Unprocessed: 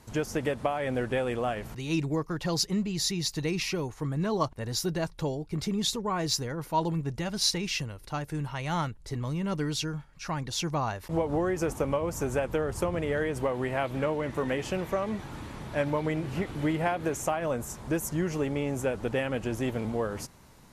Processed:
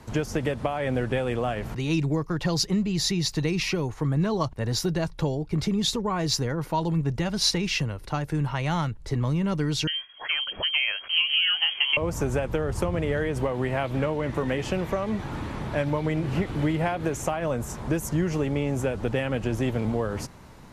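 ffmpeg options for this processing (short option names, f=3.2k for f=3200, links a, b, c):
-filter_complex "[0:a]asettb=1/sr,asplit=3[a][b][c];[a]atrim=end=9.874[d];[b]atrim=start=9.87:end=11.97,asetpts=PTS-STARTPTS,afade=t=in:d=0.004:c=qsin,afade=t=out:st=2.096:d=0.004:c=qsin,lowpass=f=2.8k:t=q:w=0.5098,lowpass=f=2.8k:t=q:w=0.6013,lowpass=f=2.8k:t=q:w=0.9,lowpass=f=2.8k:t=q:w=2.563,afreqshift=-3300[e];[c]atrim=start=11.966[f];[d][e]acrossfade=d=0.004:c1=hsin:c2=qsin[g];[g][f]acrossfade=d=0.004:c1=qsin:c2=hsin,highshelf=f=5k:g=-10.5,acrossover=split=150|3000[h][i][j];[i]acompressor=threshold=-35dB:ratio=2.5[k];[h][k][j]amix=inputs=3:normalize=0,volume=8dB"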